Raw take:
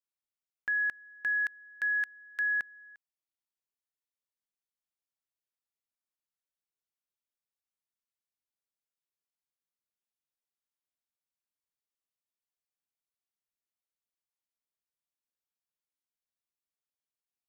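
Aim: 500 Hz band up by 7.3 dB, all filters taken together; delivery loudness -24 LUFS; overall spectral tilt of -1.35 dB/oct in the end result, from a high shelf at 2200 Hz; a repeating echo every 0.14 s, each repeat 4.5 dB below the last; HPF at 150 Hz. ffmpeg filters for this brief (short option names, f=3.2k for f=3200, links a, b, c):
-af "highpass=150,equalizer=f=500:t=o:g=9,highshelf=f=2.2k:g=3.5,aecho=1:1:140|280|420|560|700|840|980|1120|1260:0.596|0.357|0.214|0.129|0.0772|0.0463|0.0278|0.0167|0.01,volume=3.5dB"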